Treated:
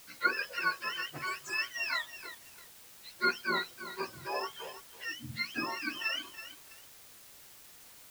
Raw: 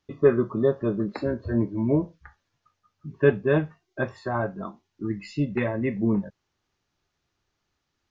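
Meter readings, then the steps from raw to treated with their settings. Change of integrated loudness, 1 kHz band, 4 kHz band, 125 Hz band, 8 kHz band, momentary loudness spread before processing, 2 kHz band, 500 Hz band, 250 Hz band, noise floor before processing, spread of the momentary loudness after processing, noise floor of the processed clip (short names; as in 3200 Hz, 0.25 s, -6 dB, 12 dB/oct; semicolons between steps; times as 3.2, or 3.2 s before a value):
-9.0 dB, +0.5 dB, +12.5 dB, -24.5 dB, n/a, 15 LU, +2.5 dB, -19.5 dB, -20.5 dB, -79 dBFS, 20 LU, -55 dBFS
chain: spectrum mirrored in octaves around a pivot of 780 Hz; requantised 8-bit, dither triangular; lo-fi delay 0.328 s, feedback 35%, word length 7-bit, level -12 dB; gain -6.5 dB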